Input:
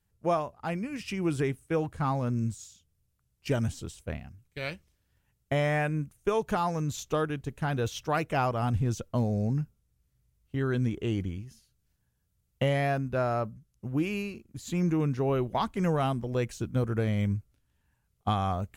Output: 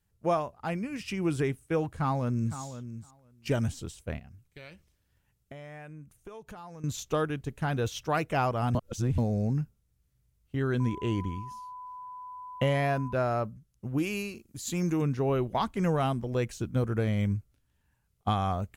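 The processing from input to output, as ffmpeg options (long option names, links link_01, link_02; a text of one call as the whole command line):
ffmpeg -i in.wav -filter_complex "[0:a]asplit=2[link_01][link_02];[link_02]afade=type=in:start_time=1.94:duration=0.01,afade=type=out:start_time=2.59:duration=0.01,aecho=0:1:510|1020:0.266073|0.0266073[link_03];[link_01][link_03]amix=inputs=2:normalize=0,asettb=1/sr,asplit=3[link_04][link_05][link_06];[link_04]atrim=end=4.194[link_07];[link_05]atrim=start=4.19:end=6.84,asetpts=PTS-STARTPTS,afade=type=in:duration=0.004:curve=qsin,afade=type=out:start_time=2.646:duration=0.004:curve=qsin,acompressor=threshold=-45dB:ratio=4:attack=3.2:release=140:knee=1:detection=peak[link_08];[link_06]atrim=start=6.836[link_09];[link_07][link_08]acrossfade=duration=0.004:curve1=hsin:curve2=qsin[link_10];[link_10][link_09]acrossfade=duration=0.004:curve1=qsin:curve2=hsin,asettb=1/sr,asplit=3[link_11][link_12][link_13];[link_11]atrim=end=10.804[link_14];[link_12]atrim=start=10.8:end=13.13,asetpts=PTS-STARTPTS,afade=type=in:duration=0.004:curve=qsin,afade=type=out:start_time=2.326:duration=0.004:curve=qsin,aeval=exprs='val(0)+0.01*sin(2*PI*1000*n/s)':channel_layout=same[link_15];[link_13]atrim=start=13.126[link_16];[link_14][link_15]acrossfade=duration=0.004:curve1=hsin:curve2=qsin[link_17];[link_17][link_16]acrossfade=duration=0.004:curve1=qsin:curve2=hsin,asettb=1/sr,asplit=3[link_18][link_19][link_20];[link_18]atrim=end=13.984[link_21];[link_19]atrim=start=13.98:end=15.02,asetpts=PTS-STARTPTS,afade=type=in:duration=0.004:curve=qsin,afade=type=out:start_time=1.036:duration=0.004:curve=qsin,bass=frequency=250:gain=-3,treble=frequency=4000:gain=8[link_22];[link_20]atrim=start=15.016[link_23];[link_21][link_22]acrossfade=duration=0.004:curve1=hsin:curve2=qsin[link_24];[link_24][link_23]acrossfade=duration=0.004:curve1=qsin:curve2=hsin,asplit=3[link_25][link_26][link_27];[link_25]atrim=end=8.752[link_28];[link_26]atrim=start=8.748:end=9.182,asetpts=PTS-STARTPTS,areverse[link_29];[link_27]atrim=start=9.178[link_30];[link_28][link_29]acrossfade=duration=0.004:curve1=hsin:curve2=hsin[link_31];[link_31][link_30]acrossfade=duration=0.004:curve1=hsin:curve2=hsin" out.wav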